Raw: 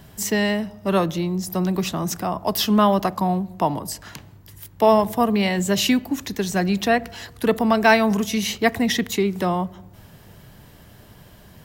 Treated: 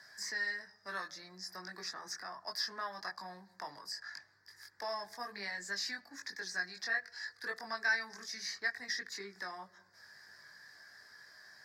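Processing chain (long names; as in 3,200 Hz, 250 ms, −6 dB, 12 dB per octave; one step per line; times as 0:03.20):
multi-voice chorus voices 4, 0.19 Hz, delay 21 ms, depth 1.5 ms
pair of resonant band-passes 2,900 Hz, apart 1.5 octaves
multiband upward and downward compressor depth 40%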